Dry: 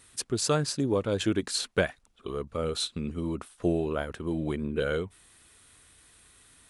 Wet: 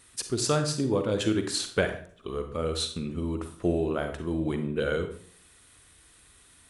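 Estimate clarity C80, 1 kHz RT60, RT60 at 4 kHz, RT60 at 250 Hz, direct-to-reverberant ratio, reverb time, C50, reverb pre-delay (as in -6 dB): 13.0 dB, 0.45 s, 0.40 s, 0.60 s, 7.0 dB, 0.50 s, 8.5 dB, 38 ms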